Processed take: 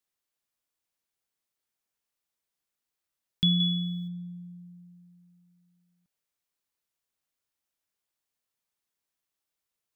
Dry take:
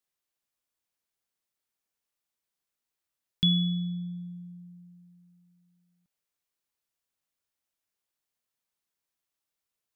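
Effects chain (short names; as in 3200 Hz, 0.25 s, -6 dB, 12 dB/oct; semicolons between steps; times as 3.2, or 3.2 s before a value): 3.6–4.08 high shelf 2100 Hz +12 dB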